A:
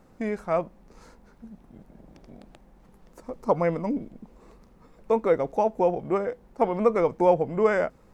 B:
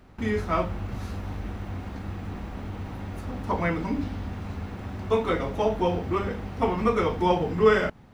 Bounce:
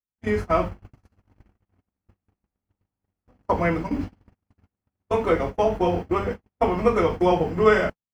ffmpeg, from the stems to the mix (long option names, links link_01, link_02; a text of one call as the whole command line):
ffmpeg -i stem1.wav -i stem2.wav -filter_complex "[0:a]highpass=310,volume=-1.5dB[link_01];[1:a]bandreject=frequency=3700:width=5.3,volume=1.5dB[link_02];[link_01][link_02]amix=inputs=2:normalize=0,agate=range=-53dB:threshold=-26dB:ratio=16:detection=peak" out.wav